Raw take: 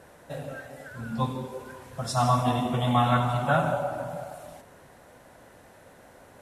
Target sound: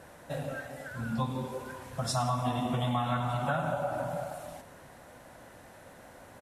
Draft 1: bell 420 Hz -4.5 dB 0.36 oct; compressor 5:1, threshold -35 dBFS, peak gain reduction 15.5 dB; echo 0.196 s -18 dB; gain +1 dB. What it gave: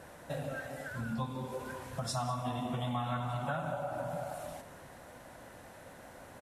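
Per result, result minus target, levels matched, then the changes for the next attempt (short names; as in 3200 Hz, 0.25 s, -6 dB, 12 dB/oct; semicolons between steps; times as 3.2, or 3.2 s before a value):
echo 92 ms late; compressor: peak gain reduction +5 dB
change: echo 0.104 s -18 dB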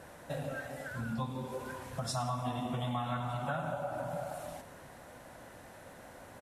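compressor: peak gain reduction +5 dB
change: compressor 5:1, threshold -28.5 dBFS, peak gain reduction 10 dB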